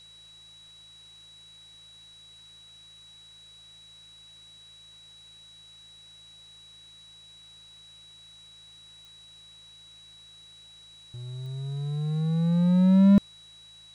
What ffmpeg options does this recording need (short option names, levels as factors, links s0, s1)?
-af "adeclick=t=4,bandreject=f=54.4:t=h:w=4,bandreject=f=108.8:t=h:w=4,bandreject=f=163.2:t=h:w=4,bandreject=f=3900:w=30,agate=range=0.0891:threshold=0.00631"